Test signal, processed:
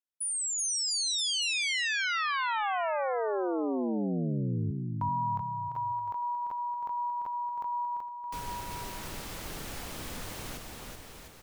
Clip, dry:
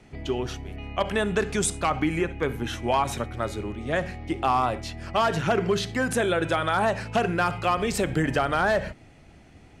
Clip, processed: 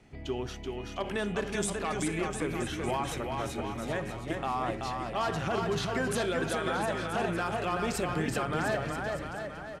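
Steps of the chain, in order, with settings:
brickwall limiter −16.5 dBFS
bouncing-ball delay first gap 380 ms, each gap 0.85×, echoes 5
level −6 dB

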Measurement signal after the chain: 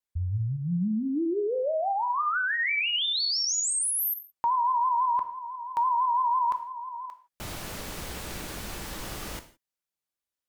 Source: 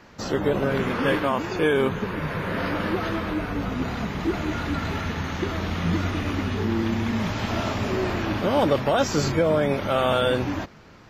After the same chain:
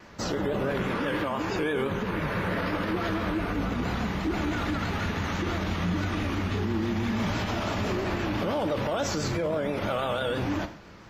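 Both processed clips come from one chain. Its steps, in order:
pitch vibrato 6 Hz 89 cents
reverb whose tail is shaped and stops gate 190 ms falling, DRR 8.5 dB
brickwall limiter −20 dBFS

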